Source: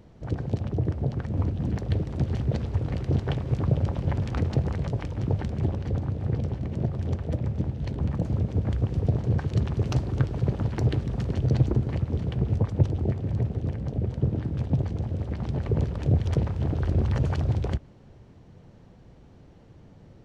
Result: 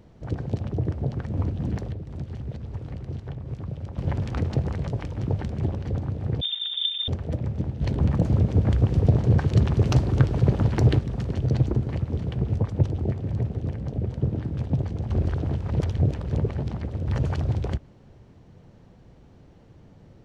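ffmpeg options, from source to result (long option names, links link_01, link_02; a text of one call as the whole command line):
ffmpeg -i in.wav -filter_complex "[0:a]asettb=1/sr,asplit=3[link_01][link_02][link_03];[link_01]atrim=end=1.884[link_04];[link_02]atrim=start=1.88:end=3.98,asetpts=PTS-STARTPTS,afade=type=in:duration=0.004:curve=qsin,afade=type=out:start_time=2.096:duration=0.004:curve=qsin,acrossover=split=190|1400[link_05][link_06][link_07];[link_05]acompressor=threshold=-32dB:ratio=4[link_08];[link_06]acompressor=threshold=-43dB:ratio=4[link_09];[link_07]acompressor=threshold=-58dB:ratio=4[link_10];[link_08][link_09][link_10]amix=inputs=3:normalize=0[link_11];[link_03]atrim=start=3.976[link_12];[link_04][link_11]acrossfade=duration=0.004:curve1=hsin:curve2=qsin[link_13];[link_13][link_12]acrossfade=duration=0.004:curve1=qsin:curve2=hsin,asettb=1/sr,asplit=3[link_14][link_15][link_16];[link_14]atrim=end=6.414[link_17];[link_15]atrim=start=6.41:end=7.08,asetpts=PTS-STARTPTS,afade=type=in:duration=0.004:curve=qsin,afade=type=out:start_time=0.666:duration=0.004:curve=qsin,lowpass=frequency=3100:width_type=q:width=0.5098,lowpass=frequency=3100:width_type=q:width=0.6013,lowpass=frequency=3100:width_type=q:width=0.9,lowpass=frequency=3100:width_type=q:width=2.563,afreqshift=-3700[link_18];[link_16]atrim=start=7.076[link_19];[link_17][link_18]acrossfade=duration=0.004:curve1=hsin:curve2=qsin[link_20];[link_20][link_19]acrossfade=duration=0.004:curve1=qsin:curve2=hsin,asettb=1/sr,asplit=3[link_21][link_22][link_23];[link_21]atrim=end=7.814[link_24];[link_22]atrim=start=7.81:end=10.99,asetpts=PTS-STARTPTS,afade=type=in:duration=0.004:curve=qsin,afade=type=out:start_time=3.176:duration=0.004:curve=qsin,acontrast=39[link_25];[link_23]atrim=start=10.986[link_26];[link_24][link_25]acrossfade=duration=0.004:curve1=hsin:curve2=qsin[link_27];[link_27][link_26]acrossfade=duration=0.004:curve1=qsin:curve2=hsin,asplit=3[link_28][link_29][link_30];[link_28]atrim=end=15.102[link_31];[link_29]atrim=start=15.098:end=17.072,asetpts=PTS-STARTPTS,areverse[link_32];[link_30]atrim=start=17.068[link_33];[link_31][link_32]acrossfade=duration=0.004:curve1=hsin:curve2=hsin[link_34];[link_34][link_33]acrossfade=duration=0.004:curve1=hsin:curve2=hsin" out.wav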